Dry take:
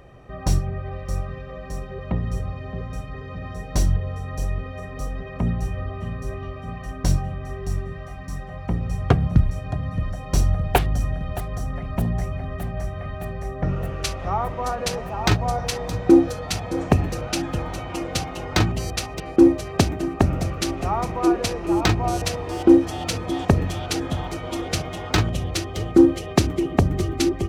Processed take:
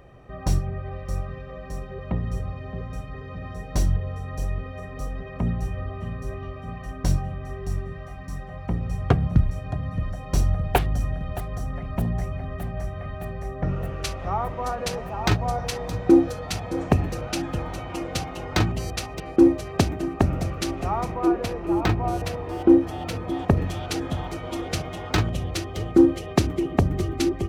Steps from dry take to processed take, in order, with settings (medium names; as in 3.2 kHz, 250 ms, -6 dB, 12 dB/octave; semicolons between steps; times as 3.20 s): peaking EQ 6.7 kHz -2.5 dB 2.1 oct, from 21.14 s -10.5 dB, from 23.57 s -3 dB; trim -2 dB